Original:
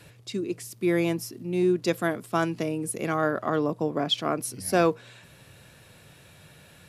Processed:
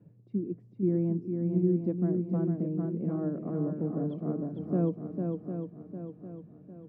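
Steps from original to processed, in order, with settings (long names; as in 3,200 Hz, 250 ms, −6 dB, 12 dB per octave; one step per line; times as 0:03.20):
four-pole ladder band-pass 230 Hz, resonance 40%
low-shelf EQ 230 Hz +10 dB
on a send: feedback echo with a long and a short gap by turns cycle 753 ms, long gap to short 1.5 to 1, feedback 40%, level −4.5 dB
on the sum: level +3.5 dB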